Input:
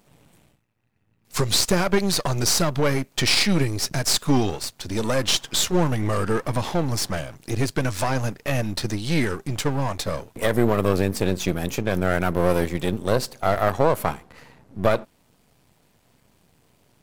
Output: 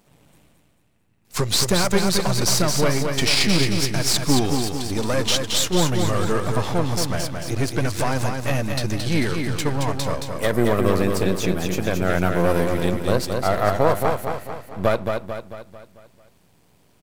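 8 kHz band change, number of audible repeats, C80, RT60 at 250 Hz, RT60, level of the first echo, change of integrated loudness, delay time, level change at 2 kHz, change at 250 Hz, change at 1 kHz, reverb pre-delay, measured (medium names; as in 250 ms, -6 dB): +1.5 dB, 5, no reverb, no reverb, no reverb, -5.0 dB, +1.5 dB, 222 ms, +1.5 dB, +1.5 dB, +1.5 dB, no reverb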